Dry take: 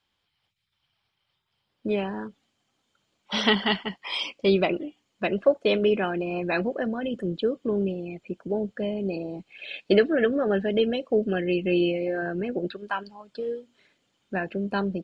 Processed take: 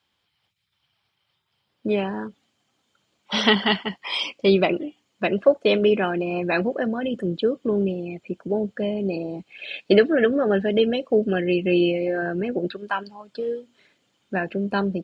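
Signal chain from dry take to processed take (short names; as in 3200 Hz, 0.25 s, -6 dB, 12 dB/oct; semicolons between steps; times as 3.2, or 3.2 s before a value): HPF 67 Hz; gain +3.5 dB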